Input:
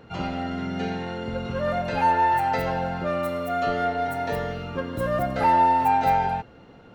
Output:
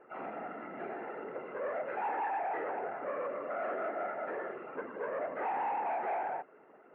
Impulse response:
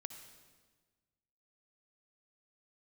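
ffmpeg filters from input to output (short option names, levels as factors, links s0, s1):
-af "afftfilt=real='hypot(re,im)*cos(2*PI*random(0))':imag='hypot(re,im)*sin(2*PI*random(1))':win_size=512:overlap=0.75,aresample=16000,asoftclip=type=tanh:threshold=0.0282,aresample=44100,highpass=f=380:t=q:w=0.5412,highpass=f=380:t=q:w=1.307,lowpass=f=2200:t=q:w=0.5176,lowpass=f=2200:t=q:w=0.7071,lowpass=f=2200:t=q:w=1.932,afreqshift=-56"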